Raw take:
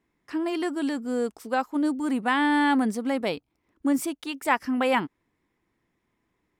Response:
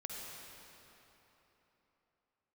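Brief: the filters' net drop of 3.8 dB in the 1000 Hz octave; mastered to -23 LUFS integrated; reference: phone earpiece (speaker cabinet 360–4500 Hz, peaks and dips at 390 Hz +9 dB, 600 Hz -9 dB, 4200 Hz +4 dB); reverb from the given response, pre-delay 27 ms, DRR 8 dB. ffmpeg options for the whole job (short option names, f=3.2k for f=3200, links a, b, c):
-filter_complex "[0:a]equalizer=f=1k:t=o:g=-3.5,asplit=2[a][b];[1:a]atrim=start_sample=2205,adelay=27[c];[b][c]afir=irnorm=-1:irlink=0,volume=-7.5dB[d];[a][d]amix=inputs=2:normalize=0,highpass=360,equalizer=f=390:t=q:w=4:g=9,equalizer=f=600:t=q:w=4:g=-9,equalizer=f=4.2k:t=q:w=4:g=4,lowpass=f=4.5k:w=0.5412,lowpass=f=4.5k:w=1.3066,volume=6dB"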